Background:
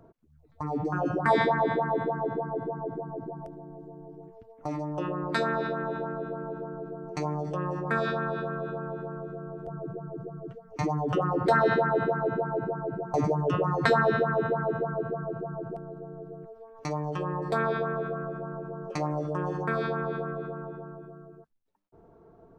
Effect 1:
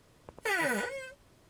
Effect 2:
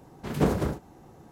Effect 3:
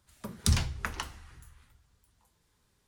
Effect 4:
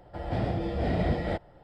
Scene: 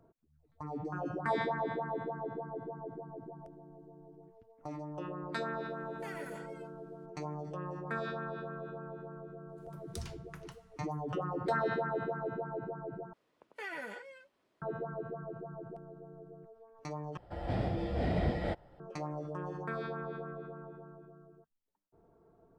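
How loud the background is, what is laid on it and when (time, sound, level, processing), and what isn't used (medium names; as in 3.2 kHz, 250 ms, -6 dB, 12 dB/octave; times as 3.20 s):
background -9.5 dB
5.57 s: add 1 -17.5 dB
9.49 s: add 3 -17.5 dB
13.13 s: replace with 1 -11.5 dB + three-band isolator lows -23 dB, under 200 Hz, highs -12 dB, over 4.5 kHz
17.17 s: replace with 4 -4.5 dB
not used: 2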